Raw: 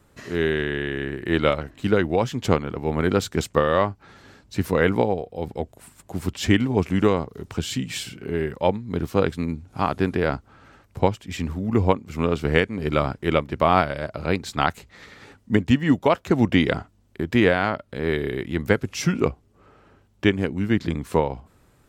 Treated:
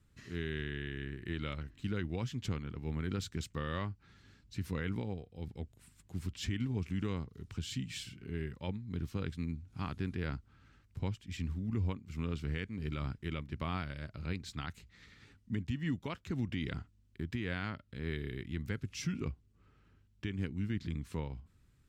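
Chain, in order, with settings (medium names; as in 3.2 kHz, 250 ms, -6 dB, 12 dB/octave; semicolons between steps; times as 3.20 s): amplifier tone stack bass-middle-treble 6-0-2; peak limiter -32 dBFS, peak gain reduction 9.5 dB; treble shelf 7.7 kHz -11 dB; trim +6 dB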